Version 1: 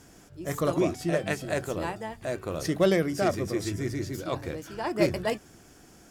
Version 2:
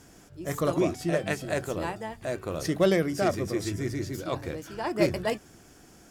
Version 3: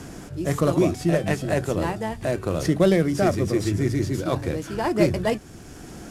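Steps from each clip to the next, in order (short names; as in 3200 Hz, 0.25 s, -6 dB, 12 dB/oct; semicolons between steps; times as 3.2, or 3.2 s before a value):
nothing audible
CVSD 64 kbps; low shelf 330 Hz +7 dB; three-band squash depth 40%; gain +3 dB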